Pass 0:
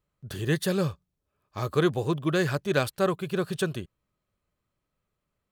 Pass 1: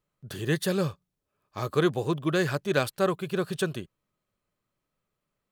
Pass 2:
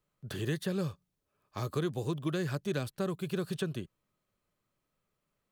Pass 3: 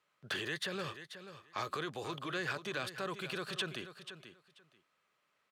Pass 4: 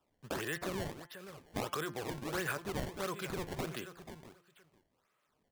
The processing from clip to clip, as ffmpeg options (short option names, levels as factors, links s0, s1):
-af "equalizer=f=61:t=o:w=1:g=-12"
-filter_complex "[0:a]acrossover=split=320|3700[s0][s1][s2];[s0]acompressor=threshold=0.0251:ratio=4[s3];[s1]acompressor=threshold=0.0112:ratio=4[s4];[s2]acompressor=threshold=0.00355:ratio=4[s5];[s3][s4][s5]amix=inputs=3:normalize=0"
-af "alimiter=level_in=2.11:limit=0.0631:level=0:latency=1:release=19,volume=0.473,bandpass=f=2000:t=q:w=0.75:csg=0,aecho=1:1:486|972:0.266|0.0452,volume=3.35"
-af "aemphasis=mode=reproduction:type=50fm,acrusher=samples=20:mix=1:aa=0.000001:lfo=1:lforange=32:lforate=1.5,bandreject=f=173.6:t=h:w=4,bandreject=f=347.2:t=h:w=4,bandreject=f=520.8:t=h:w=4,bandreject=f=694.4:t=h:w=4,bandreject=f=868:t=h:w=4,bandreject=f=1041.6:t=h:w=4,bandreject=f=1215.2:t=h:w=4,bandreject=f=1388.8:t=h:w=4,bandreject=f=1562.4:t=h:w=4,bandreject=f=1736:t=h:w=4,bandreject=f=1909.6:t=h:w=4,bandreject=f=2083.2:t=h:w=4,bandreject=f=2256.8:t=h:w=4,bandreject=f=2430.4:t=h:w=4,bandreject=f=2604:t=h:w=4,bandreject=f=2777.6:t=h:w=4,bandreject=f=2951.2:t=h:w=4,bandreject=f=3124.8:t=h:w=4,bandreject=f=3298.4:t=h:w=4,volume=1.19"